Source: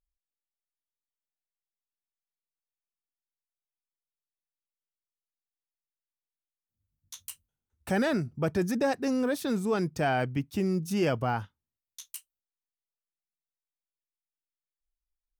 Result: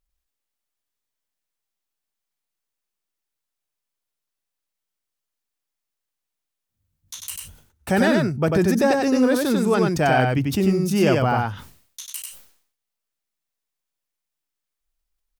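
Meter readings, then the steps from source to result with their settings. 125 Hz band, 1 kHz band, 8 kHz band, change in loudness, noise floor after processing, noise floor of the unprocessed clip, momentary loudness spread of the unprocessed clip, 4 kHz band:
+10.0 dB, +9.5 dB, +10.5 dB, +9.5 dB, -83 dBFS, under -85 dBFS, 17 LU, +10.0 dB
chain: delay 94 ms -3 dB; decay stretcher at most 98 dB/s; trim +7.5 dB

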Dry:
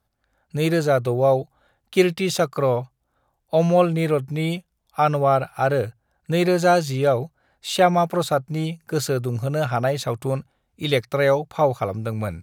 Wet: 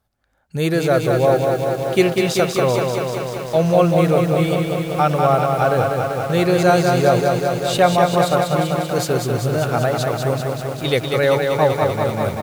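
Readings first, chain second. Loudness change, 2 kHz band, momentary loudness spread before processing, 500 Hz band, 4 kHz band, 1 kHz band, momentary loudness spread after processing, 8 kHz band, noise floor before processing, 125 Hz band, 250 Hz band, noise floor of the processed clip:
+4.0 dB, +4.5 dB, 9 LU, +4.5 dB, +4.5 dB, +4.5 dB, 6 LU, +4.5 dB, -73 dBFS, +4.5 dB, +4.5 dB, -29 dBFS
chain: delay 501 ms -19.5 dB; bit-crushed delay 194 ms, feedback 80%, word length 7-bit, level -4 dB; trim +1.5 dB

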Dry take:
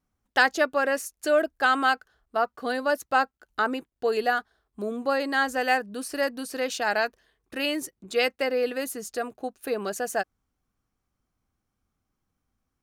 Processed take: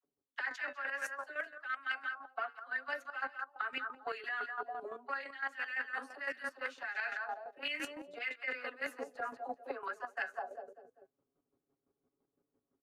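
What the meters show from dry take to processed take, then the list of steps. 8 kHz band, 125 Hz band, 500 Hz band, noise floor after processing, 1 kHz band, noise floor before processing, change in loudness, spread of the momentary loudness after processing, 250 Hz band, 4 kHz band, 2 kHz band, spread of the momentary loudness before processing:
-20.5 dB, no reading, -19.5 dB, under -85 dBFS, -14.0 dB, -82 dBFS, -13.0 dB, 5 LU, -21.5 dB, -14.0 dB, -9.5 dB, 10 LU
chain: flange 0.49 Hz, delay 6.8 ms, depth 1.4 ms, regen -82%; in parallel at -7 dB: saturation -24.5 dBFS, distortion -12 dB; on the sum: dynamic bell 1.3 kHz, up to +5 dB, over -36 dBFS, Q 1.1; comb 7.2 ms, depth 98%; feedback delay 197 ms, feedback 40%, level -12 dB; auto-wah 410–2100 Hz, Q 2.9, up, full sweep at -20.5 dBFS; treble shelf 11 kHz +4 dB; phase dispersion lows, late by 50 ms, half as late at 580 Hz; square tremolo 5.9 Hz, depth 65%, duty 30%; reverse; compression 8:1, threshold -48 dBFS, peak gain reduction 25 dB; reverse; trim +11.5 dB

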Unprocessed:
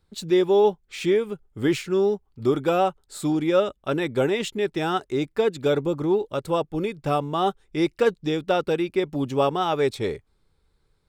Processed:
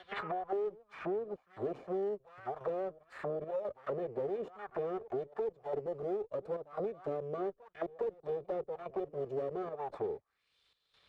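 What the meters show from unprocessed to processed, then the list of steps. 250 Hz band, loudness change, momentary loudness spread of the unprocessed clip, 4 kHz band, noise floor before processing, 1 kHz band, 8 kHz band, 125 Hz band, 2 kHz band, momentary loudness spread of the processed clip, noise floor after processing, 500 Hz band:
-19.5 dB, -15.0 dB, 6 LU, under -25 dB, -68 dBFS, -15.0 dB, under -30 dB, -19.0 dB, -17.5 dB, 4 LU, -78 dBFS, -13.5 dB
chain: comb filter that takes the minimum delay 1.7 ms; bass shelf 130 Hz +8.5 dB; in parallel at -6 dB: decimation with a swept rate 14×, swing 60% 0.56 Hz; on the sum: dynamic bell 1.3 kHz, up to +4 dB, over -37 dBFS, Q 1.6; trance gate "xxx..xxxxx" 144 bpm -12 dB; saturation -19 dBFS, distortion -9 dB; on a send: reverse echo 409 ms -22.5 dB; on the sum: auto-wah 410–3700 Hz, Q 2.6, down, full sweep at -22.5 dBFS; three bands compressed up and down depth 100%; trim -7 dB

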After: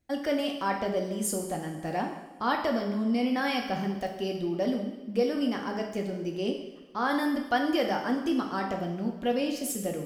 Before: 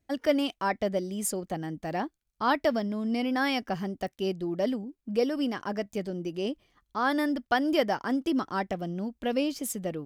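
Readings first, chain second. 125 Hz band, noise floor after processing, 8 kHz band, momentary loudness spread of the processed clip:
+0.5 dB, -44 dBFS, +1.0 dB, 6 LU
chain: in parallel at -1 dB: peak limiter -22.5 dBFS, peak gain reduction 10.5 dB; on the sum: two-slope reverb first 0.86 s, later 2.5 s, from -17 dB, DRR 1.5 dB; trim -6.5 dB

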